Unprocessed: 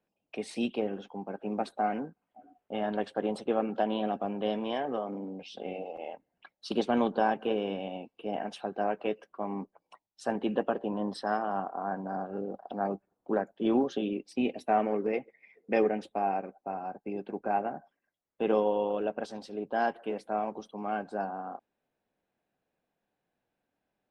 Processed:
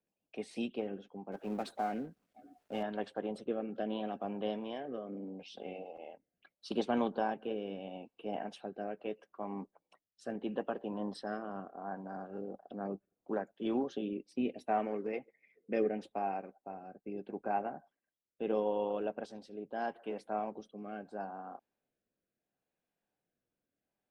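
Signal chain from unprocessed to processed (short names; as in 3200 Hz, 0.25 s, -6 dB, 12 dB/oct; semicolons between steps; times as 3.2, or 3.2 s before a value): 1.32–2.83 G.711 law mismatch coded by mu; rotary speaker horn 7 Hz, later 0.75 Hz, at 0.23; gain -4.5 dB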